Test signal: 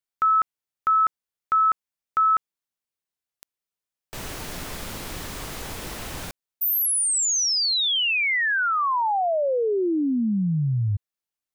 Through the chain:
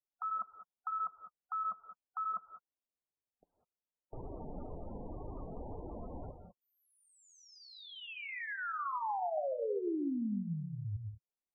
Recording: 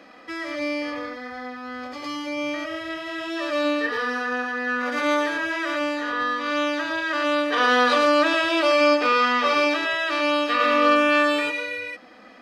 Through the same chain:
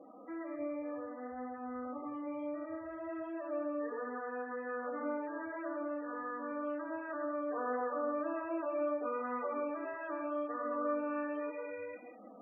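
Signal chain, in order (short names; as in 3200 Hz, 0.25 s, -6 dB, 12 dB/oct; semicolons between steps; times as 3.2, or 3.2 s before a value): Chebyshev low-pass 830 Hz, order 2; compressor 2:1, threshold -39 dBFS; non-linear reverb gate 0.22 s rising, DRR 7 dB; loudest bins only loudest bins 32; flange 1.9 Hz, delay 2.1 ms, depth 2.5 ms, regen -49%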